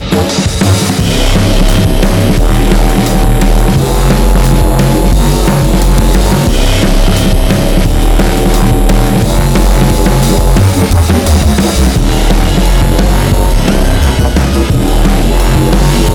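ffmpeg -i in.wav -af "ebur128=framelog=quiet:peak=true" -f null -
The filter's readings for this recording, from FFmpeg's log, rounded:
Integrated loudness:
  I:          -9.6 LUFS
  Threshold: -19.6 LUFS
Loudness range:
  LRA:         0.9 LU
  Threshold: -29.5 LUFS
  LRA low:    -9.9 LUFS
  LRA high:   -9.1 LUFS
True peak:
  Peak:       -1.8 dBFS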